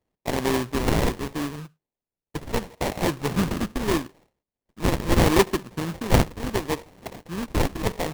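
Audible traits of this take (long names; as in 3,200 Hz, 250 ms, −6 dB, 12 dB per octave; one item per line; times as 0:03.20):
a buzz of ramps at a fixed pitch in blocks of 32 samples
phaser sweep stages 12, 0.75 Hz, lowest notch 640–1,400 Hz
aliases and images of a low sample rate 1,400 Hz, jitter 20%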